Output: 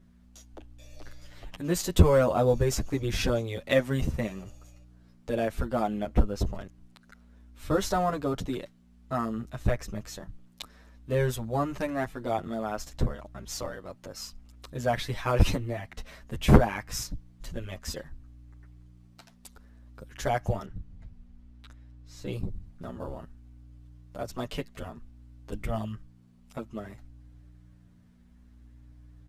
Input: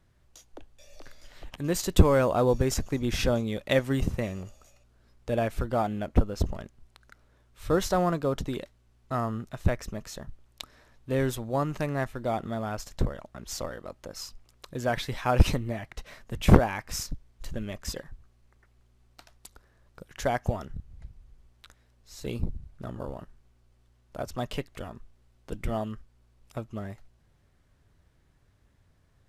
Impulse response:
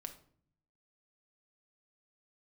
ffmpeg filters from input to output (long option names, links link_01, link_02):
-filter_complex "[0:a]aeval=exprs='val(0)+0.00251*(sin(2*PI*60*n/s)+sin(2*PI*2*60*n/s)/2+sin(2*PI*3*60*n/s)/3+sin(2*PI*4*60*n/s)/4+sin(2*PI*5*60*n/s)/5)':channel_layout=same,asettb=1/sr,asplit=3[link_01][link_02][link_03];[link_01]atrim=end=20.654[link_04];[link_02]atrim=start=20.65:end=22.32,asetpts=PTS-STARTPTS,afade=type=in:duration=0.004:curve=qsin,afade=type=out:start_time=1.666:duration=0.004:curve=qsin,highshelf=frequency=7100:gain=-10[link_05];[link_03]atrim=start=22.316[link_06];[link_04][link_05]acrossfade=duration=0.004:curve1=hsin:curve2=qsin[link_07];[link_07][link_06]acrossfade=duration=0.004:curve1=qsin:curve2=hsin,asplit=2[link_08][link_09];[link_09]adelay=8.6,afreqshift=-0.57[link_10];[link_08][link_10]amix=inputs=2:normalize=1,volume=2.5dB"